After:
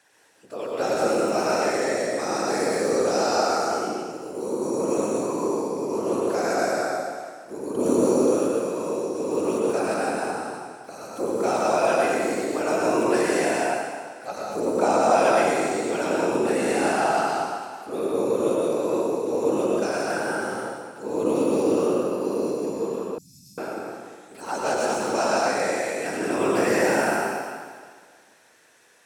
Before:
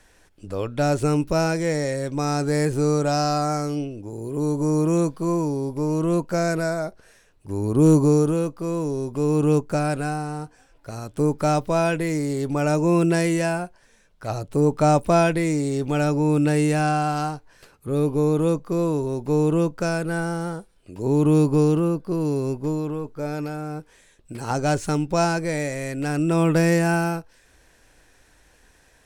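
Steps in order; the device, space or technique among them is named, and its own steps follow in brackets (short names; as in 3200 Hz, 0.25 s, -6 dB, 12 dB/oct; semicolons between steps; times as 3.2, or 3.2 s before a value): whispering ghost (whisperiser; HPF 390 Hz 12 dB/oct; reverb RT60 1.8 s, pre-delay 92 ms, DRR -4 dB); 23.18–23.58 inverse Chebyshev band-stop 480–1600 Hz, stop band 70 dB; gain -3.5 dB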